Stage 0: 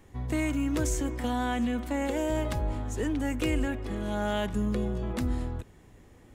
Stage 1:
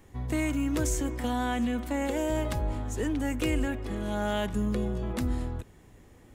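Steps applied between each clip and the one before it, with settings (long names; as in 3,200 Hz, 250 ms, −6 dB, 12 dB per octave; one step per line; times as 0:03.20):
high-shelf EQ 9,500 Hz +4 dB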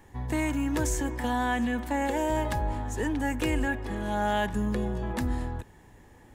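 hollow resonant body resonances 890/1,700 Hz, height 11 dB, ringing for 25 ms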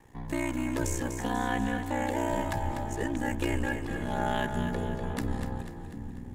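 ring modulation 31 Hz
echo with a time of its own for lows and highs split 340 Hz, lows 755 ms, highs 246 ms, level −8 dB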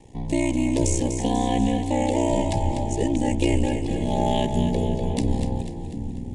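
Butterworth band-reject 1,400 Hz, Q 0.86
downsampling to 22,050 Hz
level +9 dB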